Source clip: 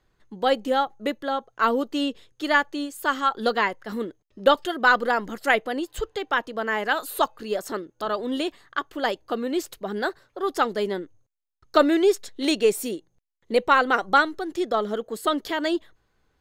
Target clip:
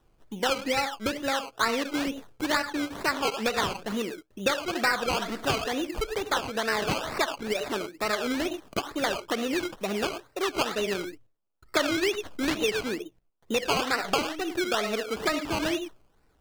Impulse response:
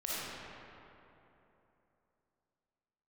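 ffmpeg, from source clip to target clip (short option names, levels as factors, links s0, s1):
-filter_complex "[0:a]asplit=2[s0][s1];[1:a]atrim=start_sample=2205,afade=t=out:st=0.16:d=0.01,atrim=end_sample=7497,highshelf=f=2100:g=-9[s2];[s1][s2]afir=irnorm=-1:irlink=0,volume=0.531[s3];[s0][s3]amix=inputs=2:normalize=0,acrusher=samples=19:mix=1:aa=0.000001:lfo=1:lforange=11.4:lforate=2.2,acrossover=split=1600|6100[s4][s5][s6];[s4]acompressor=threshold=0.0447:ratio=4[s7];[s5]acompressor=threshold=0.0447:ratio=4[s8];[s6]acompressor=threshold=0.00562:ratio=4[s9];[s7][s8][s9]amix=inputs=3:normalize=0"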